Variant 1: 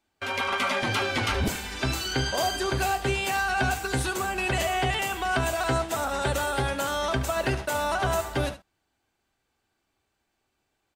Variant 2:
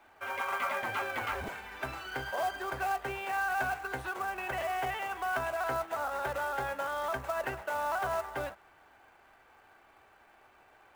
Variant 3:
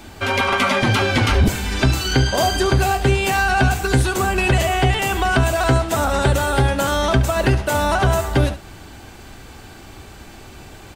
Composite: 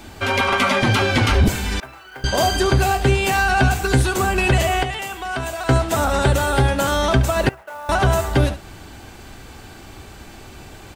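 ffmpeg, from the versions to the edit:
-filter_complex "[1:a]asplit=2[s0][s1];[2:a]asplit=4[s2][s3][s4][s5];[s2]atrim=end=1.802[s6];[s0]atrim=start=1.798:end=2.242[s7];[s3]atrim=start=2.238:end=4.832[s8];[0:a]atrim=start=4.828:end=5.692[s9];[s4]atrim=start=5.688:end=7.492[s10];[s1]atrim=start=7.488:end=7.892[s11];[s5]atrim=start=7.888[s12];[s6][s7]acrossfade=d=0.004:c1=hsin:c2=hsin[s13];[s13][s8]acrossfade=d=0.004:c1=hsin:c2=hsin[s14];[s14][s9]acrossfade=d=0.004:c1=hsin:c2=hsin[s15];[s15][s10]acrossfade=d=0.004:c1=hsin:c2=hsin[s16];[s16][s11]acrossfade=d=0.004:c1=hsin:c2=hsin[s17];[s17][s12]acrossfade=d=0.004:c1=hsin:c2=hsin"

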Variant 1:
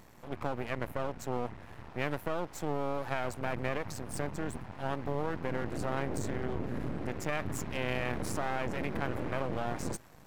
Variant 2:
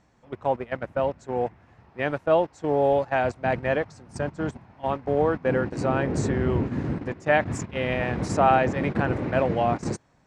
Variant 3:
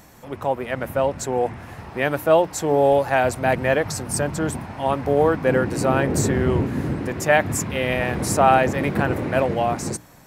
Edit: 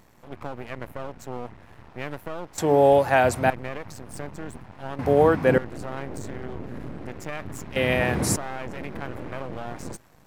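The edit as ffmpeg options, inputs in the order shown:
-filter_complex "[2:a]asplit=3[s0][s1][s2];[0:a]asplit=4[s3][s4][s5][s6];[s3]atrim=end=2.582[s7];[s0]atrim=start=2.578:end=3.502[s8];[s4]atrim=start=3.498:end=4.992[s9];[s1]atrim=start=4.988:end=5.582[s10];[s5]atrim=start=5.578:end=7.762[s11];[s2]atrim=start=7.758:end=8.362[s12];[s6]atrim=start=8.358[s13];[s7][s8]acrossfade=d=0.004:c1=hsin:c2=hsin[s14];[s14][s9]acrossfade=d=0.004:c1=hsin:c2=hsin[s15];[s15][s10]acrossfade=d=0.004:c1=hsin:c2=hsin[s16];[s16][s11]acrossfade=d=0.004:c1=hsin:c2=hsin[s17];[s17][s12]acrossfade=d=0.004:c1=hsin:c2=hsin[s18];[s18][s13]acrossfade=d=0.004:c1=hsin:c2=hsin"

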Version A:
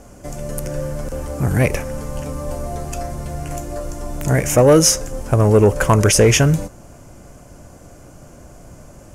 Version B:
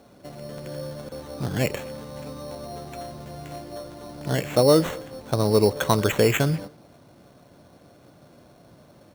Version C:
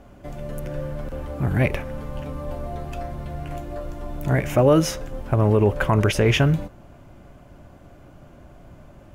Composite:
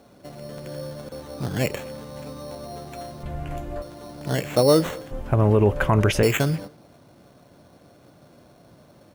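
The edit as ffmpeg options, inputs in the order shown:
-filter_complex "[2:a]asplit=2[s0][s1];[1:a]asplit=3[s2][s3][s4];[s2]atrim=end=3.232[s5];[s0]atrim=start=3.228:end=3.822[s6];[s3]atrim=start=3.818:end=5.112[s7];[s1]atrim=start=5.108:end=6.232[s8];[s4]atrim=start=6.228[s9];[s5][s6]acrossfade=d=0.004:c1=hsin:c2=hsin[s10];[s10][s7]acrossfade=d=0.004:c1=hsin:c2=hsin[s11];[s11][s8]acrossfade=d=0.004:c1=hsin:c2=hsin[s12];[s12][s9]acrossfade=d=0.004:c1=hsin:c2=hsin"

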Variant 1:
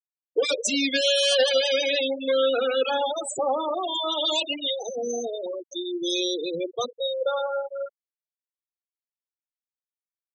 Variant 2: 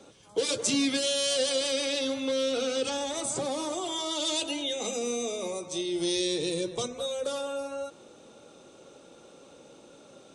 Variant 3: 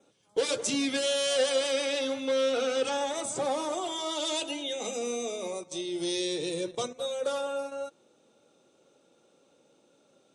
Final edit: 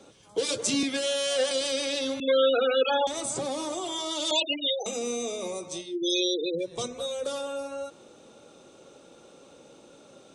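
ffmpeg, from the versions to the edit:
-filter_complex "[0:a]asplit=3[s0][s1][s2];[1:a]asplit=5[s3][s4][s5][s6][s7];[s3]atrim=end=0.832[s8];[2:a]atrim=start=0.828:end=1.512[s9];[s4]atrim=start=1.508:end=2.202[s10];[s0]atrim=start=2.198:end=3.072[s11];[s5]atrim=start=3.068:end=4.312[s12];[s1]atrim=start=4.308:end=4.862[s13];[s6]atrim=start=4.858:end=5.97[s14];[s2]atrim=start=5.73:end=6.82[s15];[s7]atrim=start=6.58[s16];[s8][s9]acrossfade=d=0.004:c1=hsin:c2=hsin[s17];[s17][s10]acrossfade=d=0.004:c1=hsin:c2=hsin[s18];[s18][s11]acrossfade=d=0.004:c1=hsin:c2=hsin[s19];[s19][s12]acrossfade=d=0.004:c1=hsin:c2=hsin[s20];[s20][s13]acrossfade=d=0.004:c1=hsin:c2=hsin[s21];[s21][s14]acrossfade=d=0.004:c1=hsin:c2=hsin[s22];[s22][s15]acrossfade=d=0.24:c1=tri:c2=tri[s23];[s23][s16]acrossfade=d=0.24:c1=tri:c2=tri"

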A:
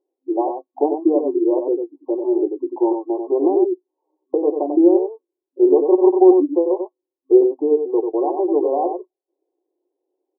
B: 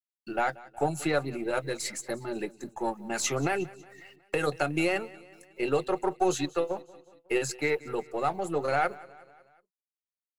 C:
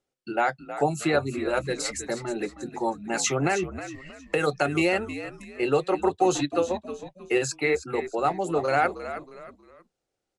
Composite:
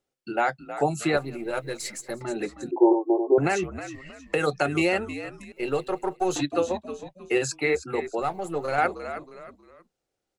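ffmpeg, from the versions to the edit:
-filter_complex "[1:a]asplit=3[s0][s1][s2];[2:a]asplit=5[s3][s4][s5][s6][s7];[s3]atrim=end=1.172[s8];[s0]atrim=start=1.168:end=2.212[s9];[s4]atrim=start=2.208:end=2.712[s10];[0:a]atrim=start=2.708:end=3.382[s11];[s5]atrim=start=3.378:end=5.522[s12];[s1]atrim=start=5.518:end=6.362[s13];[s6]atrim=start=6.358:end=8.222[s14];[s2]atrim=start=8.218:end=8.782[s15];[s7]atrim=start=8.778[s16];[s8][s9]acrossfade=d=0.004:c1=hsin:c2=hsin[s17];[s17][s10]acrossfade=d=0.004:c1=hsin:c2=hsin[s18];[s18][s11]acrossfade=d=0.004:c1=hsin:c2=hsin[s19];[s19][s12]acrossfade=d=0.004:c1=hsin:c2=hsin[s20];[s20][s13]acrossfade=d=0.004:c1=hsin:c2=hsin[s21];[s21][s14]acrossfade=d=0.004:c1=hsin:c2=hsin[s22];[s22][s15]acrossfade=d=0.004:c1=hsin:c2=hsin[s23];[s23][s16]acrossfade=d=0.004:c1=hsin:c2=hsin"

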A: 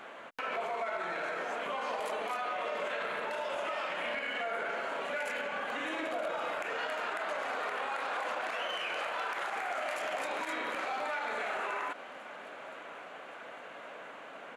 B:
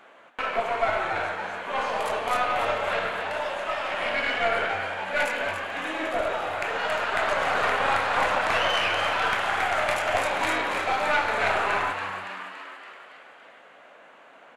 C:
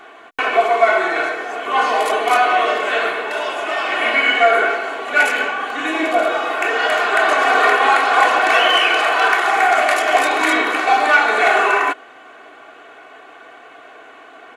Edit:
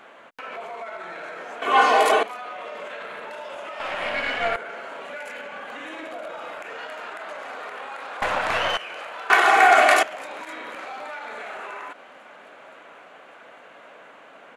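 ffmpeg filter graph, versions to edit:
-filter_complex "[2:a]asplit=2[s0][s1];[1:a]asplit=2[s2][s3];[0:a]asplit=5[s4][s5][s6][s7][s8];[s4]atrim=end=1.622[s9];[s0]atrim=start=1.618:end=2.232[s10];[s5]atrim=start=2.228:end=3.802[s11];[s2]atrim=start=3.798:end=4.562[s12];[s6]atrim=start=4.558:end=8.222[s13];[s3]atrim=start=8.218:end=8.772[s14];[s7]atrim=start=8.768:end=9.302[s15];[s1]atrim=start=9.298:end=10.032[s16];[s8]atrim=start=10.028[s17];[s9][s10]acrossfade=d=0.004:c1=hsin:c2=hsin[s18];[s18][s11]acrossfade=d=0.004:c1=hsin:c2=hsin[s19];[s19][s12]acrossfade=d=0.004:c1=hsin:c2=hsin[s20];[s20][s13]acrossfade=d=0.004:c1=hsin:c2=hsin[s21];[s21][s14]acrossfade=d=0.004:c1=hsin:c2=hsin[s22];[s22][s15]acrossfade=d=0.004:c1=hsin:c2=hsin[s23];[s23][s16]acrossfade=d=0.004:c1=hsin:c2=hsin[s24];[s24][s17]acrossfade=d=0.004:c1=hsin:c2=hsin"

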